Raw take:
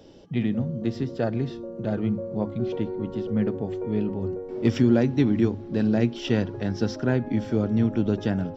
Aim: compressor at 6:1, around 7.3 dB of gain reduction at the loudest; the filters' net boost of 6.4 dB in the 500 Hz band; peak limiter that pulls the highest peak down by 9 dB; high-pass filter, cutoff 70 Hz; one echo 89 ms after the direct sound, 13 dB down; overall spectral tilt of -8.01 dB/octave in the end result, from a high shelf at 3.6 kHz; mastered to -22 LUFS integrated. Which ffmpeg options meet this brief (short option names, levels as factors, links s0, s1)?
-af "highpass=70,equalizer=f=500:t=o:g=8.5,highshelf=f=3600:g=-6,acompressor=threshold=0.1:ratio=6,alimiter=limit=0.1:level=0:latency=1,aecho=1:1:89:0.224,volume=2.24"